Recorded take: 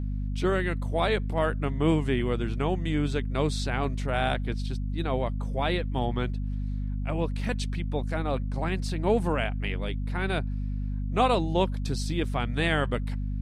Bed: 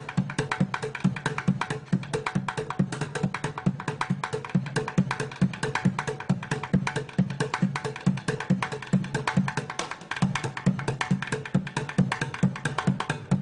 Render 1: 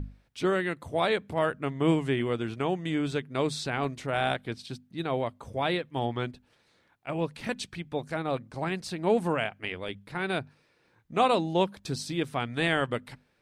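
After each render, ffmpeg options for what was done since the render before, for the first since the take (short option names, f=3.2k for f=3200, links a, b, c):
-af "bandreject=f=50:t=h:w=6,bandreject=f=100:t=h:w=6,bandreject=f=150:t=h:w=6,bandreject=f=200:t=h:w=6,bandreject=f=250:t=h:w=6"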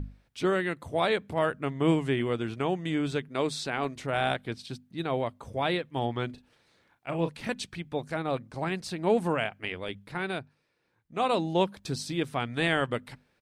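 -filter_complex "[0:a]asettb=1/sr,asplit=3[a][b][c];[a]atrim=end=3.284[d];[b]atrim=start=3.28:end=3.96,asetpts=PTS-STARTPTS,afade=t=in:d=0.004:c=qsin,afade=t=out:st=0.676:d=0.004:c=qsin,equalizer=f=85:w=1.3:g=-14[e];[c]atrim=start=3.956[f];[d][e]acrossfade=d=0.004:c1=hsin:c2=qsin[g];[g][f]acrossfade=d=0.004:c1=qsin:c2=hsin,asplit=3[h][i][j];[h]afade=t=out:st=6.29:d=0.02[k];[i]asplit=2[l][m];[m]adelay=36,volume=-9dB[n];[l][n]amix=inputs=2:normalize=0,afade=t=in:st=6.29:d=0.02,afade=t=out:st=7.28:d=0.02[o];[j]afade=t=in:st=7.28:d=0.02[p];[k][o][p]amix=inputs=3:normalize=0,asplit=3[q][r][s];[q]atrim=end=10.49,asetpts=PTS-STARTPTS,afade=t=out:st=10.16:d=0.33:silence=0.398107[t];[r]atrim=start=10.49:end=11.11,asetpts=PTS-STARTPTS,volume=-8dB[u];[s]atrim=start=11.11,asetpts=PTS-STARTPTS,afade=t=in:d=0.33:silence=0.398107[v];[t][u][v]concat=n=3:v=0:a=1"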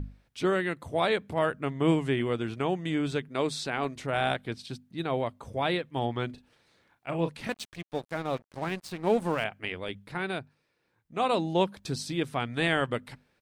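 -filter_complex "[0:a]asettb=1/sr,asplit=3[a][b][c];[a]atrim=end=7.474[d];[b]atrim=start=7.47:end=9.44,asetpts=PTS-STARTPTS,afade=t=in:d=0.004:c=qsin,afade=t=out:st=1.966:d=0.004:c=qsin,aeval=exprs='sgn(val(0))*max(abs(val(0))-0.0075,0)':c=same[e];[c]atrim=start=9.436[f];[d][e]acrossfade=d=0.004:c1=hsin:c2=qsin[g];[g][f]acrossfade=d=0.004:c1=qsin:c2=hsin"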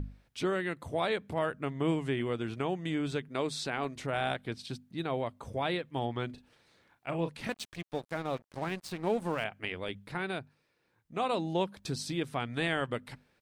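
-af "acompressor=threshold=-35dB:ratio=1.5"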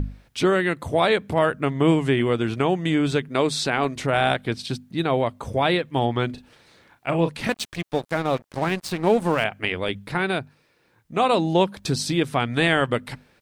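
-af "volume=11.5dB"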